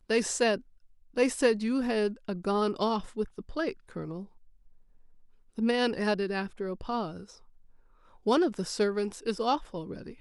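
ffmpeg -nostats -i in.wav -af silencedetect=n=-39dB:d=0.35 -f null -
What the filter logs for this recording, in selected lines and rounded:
silence_start: 0.58
silence_end: 1.16 | silence_duration: 0.59
silence_start: 4.24
silence_end: 5.58 | silence_duration: 1.34
silence_start: 7.23
silence_end: 8.26 | silence_duration: 1.03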